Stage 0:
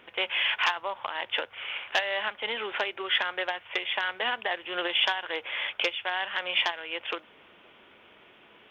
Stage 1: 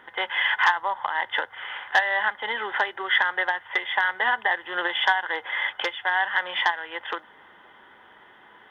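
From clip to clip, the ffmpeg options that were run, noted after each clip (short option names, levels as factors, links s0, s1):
-af "superequalizer=9b=2.82:10b=1.78:11b=2.82:12b=0.355:16b=1.58"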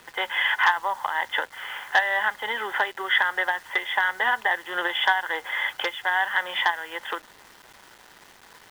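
-af "acrusher=bits=7:mix=0:aa=0.000001"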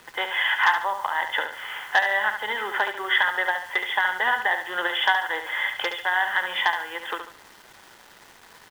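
-af "aecho=1:1:71|142|213|284:0.398|0.135|0.046|0.0156"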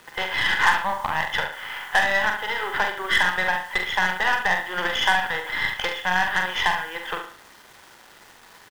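-filter_complex "[0:a]aeval=exprs='0.473*(cos(1*acos(clip(val(0)/0.473,-1,1)))-cos(1*PI/2))+0.0335*(cos(8*acos(clip(val(0)/0.473,-1,1)))-cos(8*PI/2))':c=same,asplit=2[s0][s1];[s1]adelay=44,volume=0.473[s2];[s0][s2]amix=inputs=2:normalize=0"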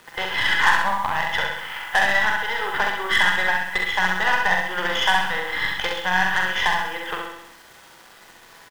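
-af "aecho=1:1:65|130|195|260|325|390|455:0.562|0.309|0.17|0.0936|0.0515|0.0283|0.0156"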